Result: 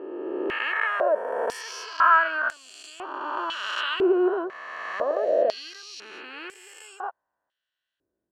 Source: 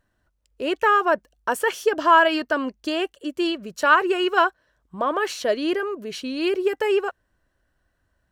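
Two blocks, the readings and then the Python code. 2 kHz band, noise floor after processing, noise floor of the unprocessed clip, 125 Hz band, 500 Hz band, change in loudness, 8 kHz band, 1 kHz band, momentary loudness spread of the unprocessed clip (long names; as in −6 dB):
−3.0 dB, −85 dBFS, −72 dBFS, can't be measured, −3.0 dB, −3.0 dB, −5.0 dB, −5.0 dB, 11 LU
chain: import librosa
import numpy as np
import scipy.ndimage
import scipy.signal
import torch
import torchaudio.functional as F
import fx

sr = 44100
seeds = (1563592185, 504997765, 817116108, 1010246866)

y = fx.spec_swells(x, sr, rise_s=2.55)
y = fx.filter_held_bandpass(y, sr, hz=2.0, low_hz=370.0, high_hz=7700.0)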